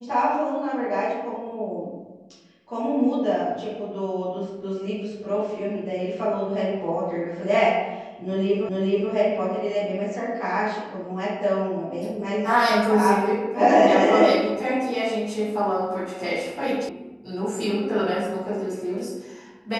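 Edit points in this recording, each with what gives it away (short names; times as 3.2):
8.69 repeat of the last 0.43 s
16.89 sound cut off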